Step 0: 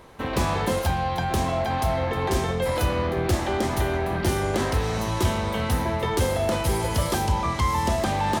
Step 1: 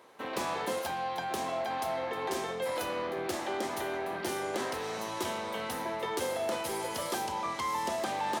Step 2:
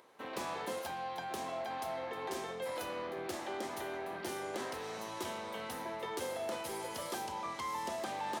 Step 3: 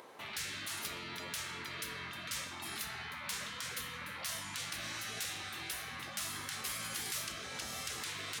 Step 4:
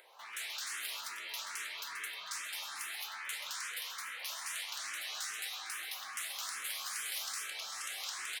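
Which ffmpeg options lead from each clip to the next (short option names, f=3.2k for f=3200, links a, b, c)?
-af "highpass=320,volume=-7dB"
-af "acompressor=mode=upward:threshold=-56dB:ratio=2.5,volume=-6dB"
-af "afftfilt=real='re*lt(hypot(re,im),0.0126)':imag='im*lt(hypot(re,im),0.0126)':win_size=1024:overlap=0.75,volume=8dB"
-filter_complex "[0:a]highpass=920,asplit=2[a][b];[b]aecho=0:1:131.2|215.7:0.355|0.891[c];[a][c]amix=inputs=2:normalize=0,asplit=2[d][e];[e]afreqshift=2.4[f];[d][f]amix=inputs=2:normalize=1,volume=1dB"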